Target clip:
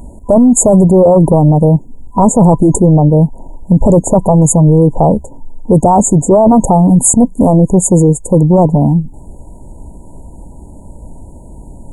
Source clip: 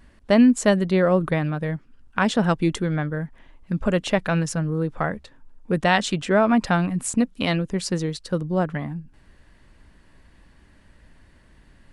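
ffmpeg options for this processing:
-af "afftfilt=real='re*(1-between(b*sr/4096,1000,6600))':imag='im*(1-between(b*sr/4096,1000,6600))':win_size=4096:overlap=0.75,apsyclip=23.5dB,volume=-2dB"

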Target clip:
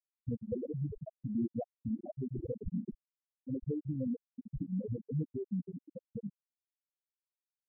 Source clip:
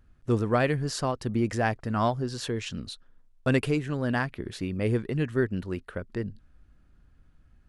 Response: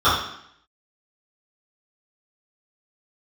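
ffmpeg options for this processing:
-af "highpass=f=180:p=1,highshelf=f=6.2k:g=8.5,bandreject=f=360:w=12,acompressor=threshold=-41dB:ratio=5,acrusher=samples=30:mix=1:aa=0.000001:lfo=1:lforange=30:lforate=0.5,alimiter=level_in=13dB:limit=-24dB:level=0:latency=1:release=101,volume=-13dB,asoftclip=type=tanh:threshold=-39dB,afftfilt=real='re*gte(hypot(re,im),0.0316)':imag='im*gte(hypot(re,im),0.0316)':win_size=1024:overlap=0.75,volume=14.5dB"

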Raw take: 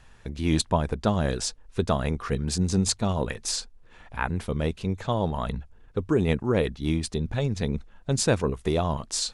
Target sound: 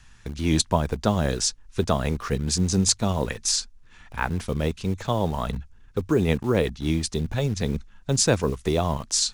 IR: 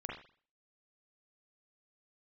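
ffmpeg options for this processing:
-filter_complex "[0:a]equalizer=f=6.1k:w=1.6:g=6,acrossover=split=340|860[a][b][c];[b]acrusher=bits=7:mix=0:aa=0.000001[d];[a][d][c]amix=inputs=3:normalize=0,volume=1.5dB"

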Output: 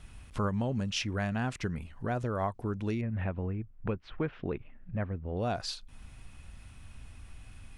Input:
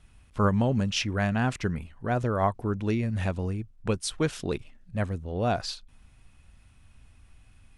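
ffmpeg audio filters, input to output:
-filter_complex "[0:a]asettb=1/sr,asplit=3[a][b][c];[a]atrim=end=3.014[d];[b]atrim=start=3.01:end=5.37,asetpts=PTS-STARTPTS,afade=t=in:d=0.004:c=qsin,afade=t=out:st=2.356:d=0.004:c=qsin,lowpass=f=2.4k:w=0.5412,lowpass=f=2.4k:w=1.3066[e];[c]atrim=start=5.366[f];[d][e]acrossfade=d=0.004:c1=hsin:c2=qsin[g];[g][f]acrossfade=d=0.004:c1=qsin:c2=hsin,acompressor=threshold=-46dB:ratio=2,volume=6.5dB"

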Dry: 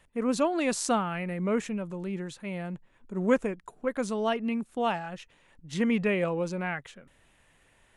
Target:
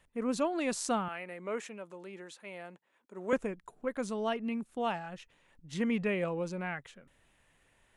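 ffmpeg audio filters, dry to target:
-filter_complex "[0:a]asettb=1/sr,asplit=3[a][b][c];[a]atrim=end=1.084[d];[b]atrim=start=1.08:end=3.33,asetpts=PTS-STARTPTS,afade=t=in:d=0.004:c=qsin,afade=t=out:st=2.246:d=0.004:c=qsin,highpass=410[e];[c]atrim=start=3.326[f];[d][e]acrossfade=d=0.004:c1=hsin:c2=qsin[g];[g][f]acrossfade=d=0.004:c1=qsin:c2=hsin,volume=-5dB"

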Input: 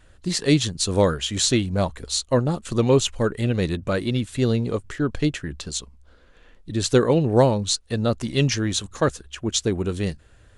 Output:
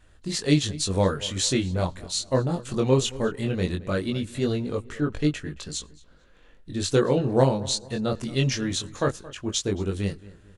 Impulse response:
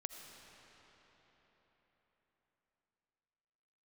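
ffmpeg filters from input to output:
-filter_complex "[0:a]asplit=2[a][b];[b]adelay=223,lowpass=f=3.1k:p=1,volume=-19dB,asplit=2[c][d];[d]adelay=223,lowpass=f=3.1k:p=1,volume=0.38,asplit=2[e][f];[f]adelay=223,lowpass=f=3.1k:p=1,volume=0.38[g];[a][c][e][g]amix=inputs=4:normalize=0,asplit=2[h][i];[1:a]atrim=start_sample=2205,atrim=end_sample=3528,asetrate=30429,aresample=44100[j];[i][j]afir=irnorm=-1:irlink=0,volume=-12dB[k];[h][k]amix=inputs=2:normalize=0,flanger=delay=20:depth=2.9:speed=0.19,volume=-2dB"

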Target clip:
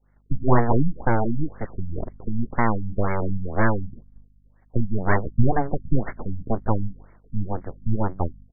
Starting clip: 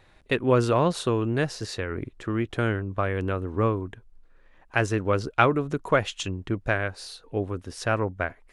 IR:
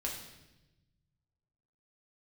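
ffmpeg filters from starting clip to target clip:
-af "aresample=8000,aeval=exprs='abs(val(0))':c=same,aresample=44100,aeval=exprs='val(0)+0.00251*(sin(2*PI*50*n/s)+sin(2*PI*2*50*n/s)/2+sin(2*PI*3*50*n/s)/3+sin(2*PI*4*50*n/s)/4+sin(2*PI*5*50*n/s)/5)':c=same,agate=range=-33dB:threshold=-41dB:ratio=3:detection=peak,afftfilt=real='re*lt(b*sr/1024,250*pow(2300/250,0.5+0.5*sin(2*PI*2*pts/sr)))':imag='im*lt(b*sr/1024,250*pow(2300/250,0.5+0.5*sin(2*PI*2*pts/sr)))':win_size=1024:overlap=0.75,volume=7dB"

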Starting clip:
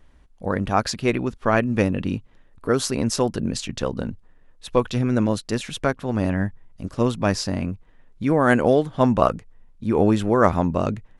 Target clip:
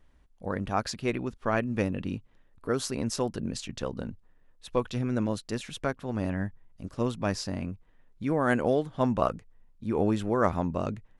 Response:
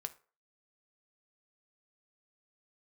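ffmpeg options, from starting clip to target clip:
-af "volume=-8dB"

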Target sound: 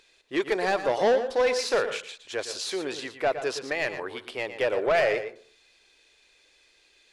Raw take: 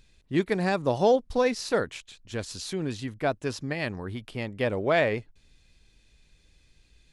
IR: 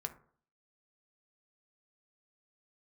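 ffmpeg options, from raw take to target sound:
-filter_complex "[0:a]lowshelf=f=270:t=q:w=1.5:g=-11.5,asplit=2[a][b];[b]highpass=f=720:p=1,volume=18dB,asoftclip=type=tanh:threshold=-8.5dB[c];[a][c]amix=inputs=2:normalize=0,lowpass=f=5.3k:p=1,volume=-6dB,asplit=2[d][e];[1:a]atrim=start_sample=2205,adelay=115[f];[e][f]afir=irnorm=-1:irlink=0,volume=-8.5dB[g];[d][g]amix=inputs=2:normalize=0,volume=-5.5dB"

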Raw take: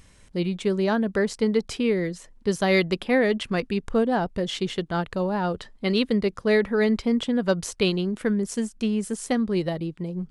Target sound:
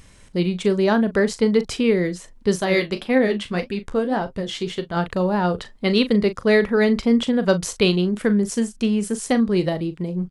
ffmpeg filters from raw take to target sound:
-filter_complex "[0:a]asettb=1/sr,asplit=3[a][b][c];[a]atrim=end=2.604[d];[b]atrim=start=2.6:end=4.97,asetpts=PTS-STARTPTS,afade=t=in:d=0.004:c=qsin,afade=t=out:st=2.366:d=0.004:c=qsin,flanger=delay=7.5:depth=7.9:regen=46:speed=1.8:shape=sinusoidal[e];[c]atrim=start=4.966[f];[d][e]acrossfade=d=0.004:c1=hsin:c2=qsin[g];[g][f]acrossfade=d=0.004:c1=qsin:c2=hsin,asplit=2[h][i];[i]adelay=39,volume=-12.5dB[j];[h][j]amix=inputs=2:normalize=0,volume=4.5dB"

